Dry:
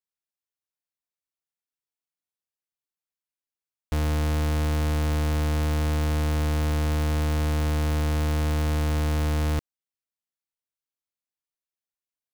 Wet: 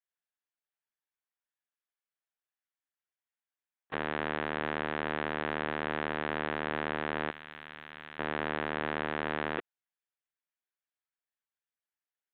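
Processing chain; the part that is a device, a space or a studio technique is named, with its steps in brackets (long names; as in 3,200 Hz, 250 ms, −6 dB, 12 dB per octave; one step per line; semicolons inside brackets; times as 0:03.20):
talking toy (linear-prediction vocoder at 8 kHz pitch kept; high-pass filter 400 Hz 12 dB per octave; parametric band 1,700 Hz +6.5 dB 0.52 octaves)
0:07.31–0:08.19: guitar amp tone stack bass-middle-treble 5-5-5
high-frequency loss of the air 140 metres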